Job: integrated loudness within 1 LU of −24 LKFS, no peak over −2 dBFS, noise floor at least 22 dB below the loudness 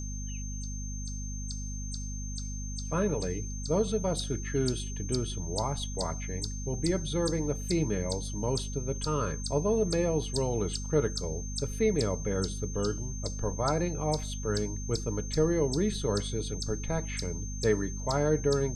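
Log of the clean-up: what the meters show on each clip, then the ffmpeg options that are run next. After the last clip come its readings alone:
mains hum 50 Hz; hum harmonics up to 250 Hz; level of the hum −34 dBFS; interfering tone 6,300 Hz; level of the tone −42 dBFS; integrated loudness −31.5 LKFS; sample peak −13.5 dBFS; target loudness −24.0 LKFS
→ -af "bandreject=frequency=50:width_type=h:width=4,bandreject=frequency=100:width_type=h:width=4,bandreject=frequency=150:width_type=h:width=4,bandreject=frequency=200:width_type=h:width=4,bandreject=frequency=250:width_type=h:width=4"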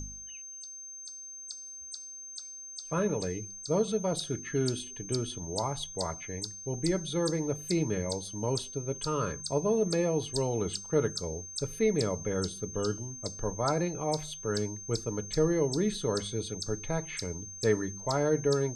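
mains hum none found; interfering tone 6,300 Hz; level of the tone −42 dBFS
→ -af "bandreject=frequency=6300:width=30"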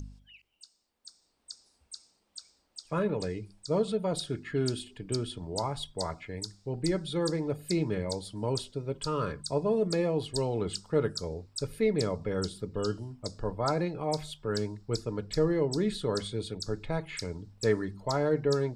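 interfering tone none found; integrated loudness −32.0 LKFS; sample peak −13.5 dBFS; target loudness −24.0 LKFS
→ -af "volume=8dB"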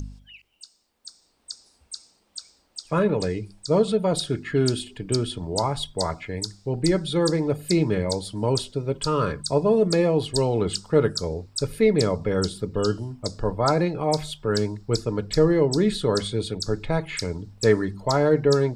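integrated loudness −24.0 LKFS; sample peak −5.5 dBFS; background noise floor −66 dBFS

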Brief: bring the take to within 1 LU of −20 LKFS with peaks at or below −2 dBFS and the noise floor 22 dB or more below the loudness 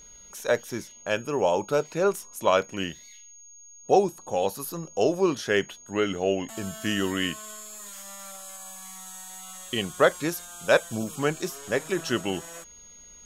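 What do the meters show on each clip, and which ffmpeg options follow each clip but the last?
interfering tone 6,600 Hz; level of the tone −47 dBFS; integrated loudness −27.0 LKFS; sample peak −6.5 dBFS; target loudness −20.0 LKFS
→ -af "bandreject=frequency=6600:width=30"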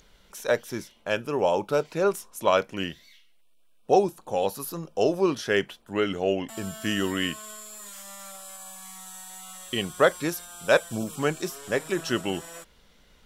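interfering tone none found; integrated loudness −27.0 LKFS; sample peak −6.5 dBFS; target loudness −20.0 LKFS
→ -af "volume=7dB,alimiter=limit=-2dB:level=0:latency=1"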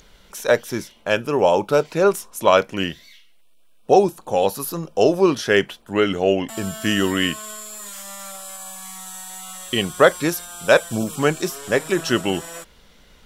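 integrated loudness −20.0 LKFS; sample peak −2.0 dBFS; background noise floor −52 dBFS

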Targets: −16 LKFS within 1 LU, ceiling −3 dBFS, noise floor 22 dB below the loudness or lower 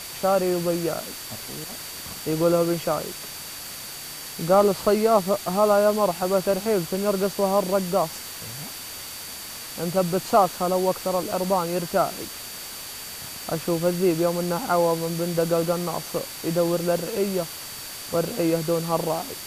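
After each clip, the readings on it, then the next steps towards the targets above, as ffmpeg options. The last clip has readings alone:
interfering tone 4,600 Hz; level of the tone −42 dBFS; background noise floor −37 dBFS; target noise floor −47 dBFS; integrated loudness −24.5 LKFS; sample peak −6.0 dBFS; target loudness −16.0 LKFS
→ -af "bandreject=frequency=4600:width=30"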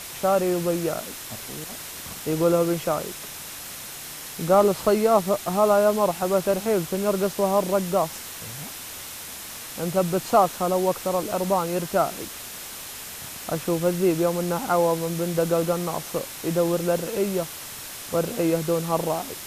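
interfering tone none found; background noise floor −38 dBFS; target noise floor −47 dBFS
→ -af "afftdn=noise_reduction=9:noise_floor=-38"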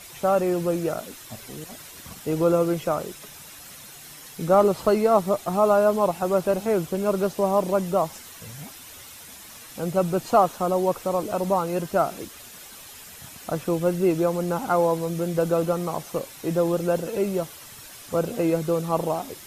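background noise floor −44 dBFS; target noise floor −46 dBFS
→ -af "afftdn=noise_reduction=6:noise_floor=-44"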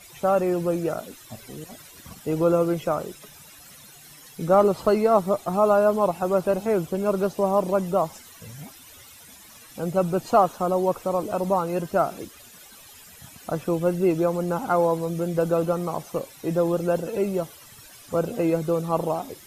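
background noise floor −48 dBFS; integrated loudness −24.0 LKFS; sample peak −6.0 dBFS; target loudness −16.0 LKFS
→ -af "volume=8dB,alimiter=limit=-3dB:level=0:latency=1"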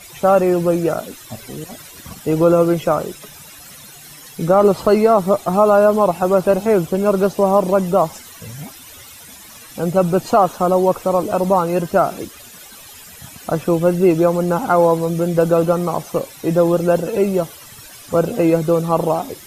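integrated loudness −16.5 LKFS; sample peak −3.0 dBFS; background noise floor −40 dBFS

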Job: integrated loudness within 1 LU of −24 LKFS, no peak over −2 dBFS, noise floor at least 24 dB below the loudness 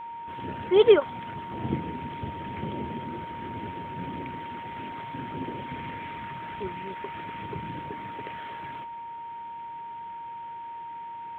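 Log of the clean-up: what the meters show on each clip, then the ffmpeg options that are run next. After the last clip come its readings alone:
interfering tone 930 Hz; level of the tone −36 dBFS; integrated loudness −31.5 LKFS; sample peak −6.5 dBFS; target loudness −24.0 LKFS
→ -af "bandreject=frequency=930:width=30"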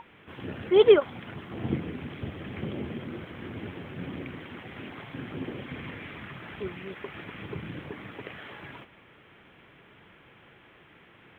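interfering tone none found; integrated loudness −31.0 LKFS; sample peak −6.5 dBFS; target loudness −24.0 LKFS
→ -af "volume=7dB,alimiter=limit=-2dB:level=0:latency=1"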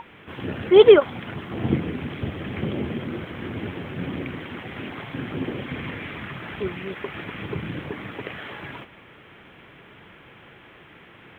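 integrated loudness −24.5 LKFS; sample peak −2.0 dBFS; background noise floor −49 dBFS

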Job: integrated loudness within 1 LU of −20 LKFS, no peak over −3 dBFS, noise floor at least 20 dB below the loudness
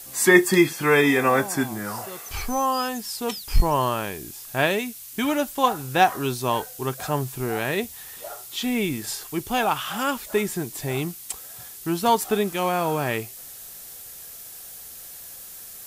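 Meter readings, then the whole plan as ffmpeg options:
background noise floor −41 dBFS; target noise floor −44 dBFS; integrated loudness −23.5 LKFS; sample peak −1.5 dBFS; target loudness −20.0 LKFS
→ -af "afftdn=noise_reduction=6:noise_floor=-41"
-af "volume=3.5dB,alimiter=limit=-3dB:level=0:latency=1"

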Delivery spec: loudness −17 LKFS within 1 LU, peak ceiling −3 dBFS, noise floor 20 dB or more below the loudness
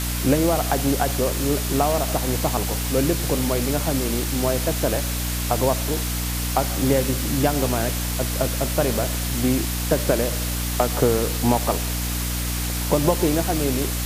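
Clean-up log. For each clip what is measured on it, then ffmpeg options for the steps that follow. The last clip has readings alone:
mains hum 60 Hz; hum harmonics up to 300 Hz; level of the hum −24 dBFS; background noise floor −25 dBFS; target noise floor −42 dBFS; integrated loudness −22.0 LKFS; sample peak −4.0 dBFS; target loudness −17.0 LKFS
→ -af "bandreject=frequency=60:width_type=h:width=4,bandreject=frequency=120:width_type=h:width=4,bandreject=frequency=180:width_type=h:width=4,bandreject=frequency=240:width_type=h:width=4,bandreject=frequency=300:width_type=h:width=4"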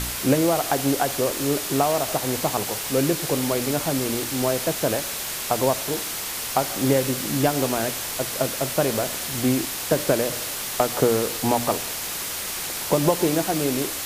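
mains hum none found; background noise floor −30 dBFS; target noise floor −43 dBFS
→ -af "afftdn=noise_reduction=13:noise_floor=-30"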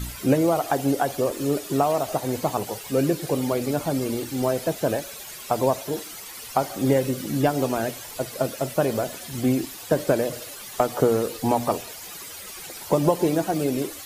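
background noise floor −39 dBFS; target noise floor −45 dBFS
→ -af "afftdn=noise_reduction=6:noise_floor=-39"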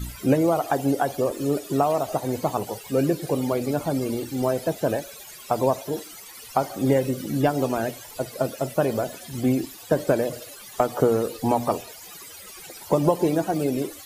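background noise floor −43 dBFS; target noise floor −45 dBFS
→ -af "afftdn=noise_reduction=6:noise_floor=-43"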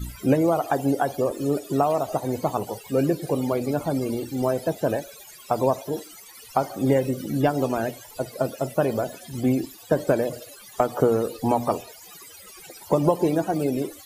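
background noise floor −46 dBFS; integrated loudness −25.0 LKFS; sample peak −6.0 dBFS; target loudness −17.0 LKFS
→ -af "volume=8dB,alimiter=limit=-3dB:level=0:latency=1"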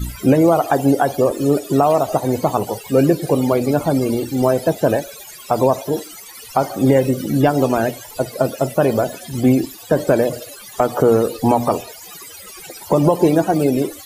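integrated loudness −17.5 LKFS; sample peak −3.0 dBFS; background noise floor −38 dBFS

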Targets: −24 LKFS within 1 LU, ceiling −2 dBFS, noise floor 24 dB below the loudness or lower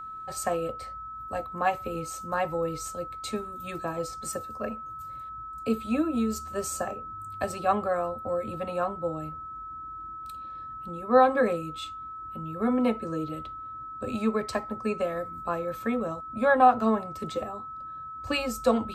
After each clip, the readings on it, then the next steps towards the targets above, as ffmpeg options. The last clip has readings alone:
interfering tone 1,300 Hz; level of the tone −37 dBFS; integrated loudness −29.5 LKFS; sample peak −7.0 dBFS; target loudness −24.0 LKFS
→ -af "bandreject=frequency=1300:width=30"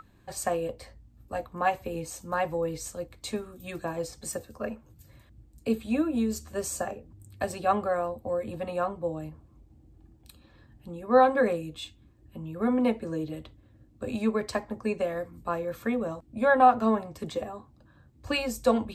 interfering tone none found; integrated loudness −29.0 LKFS; sample peak −7.5 dBFS; target loudness −24.0 LKFS
→ -af "volume=5dB"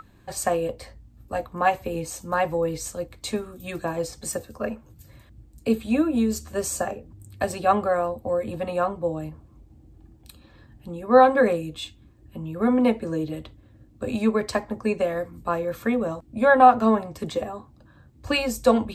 integrated loudness −24.0 LKFS; sample peak −2.5 dBFS; background noise floor −54 dBFS

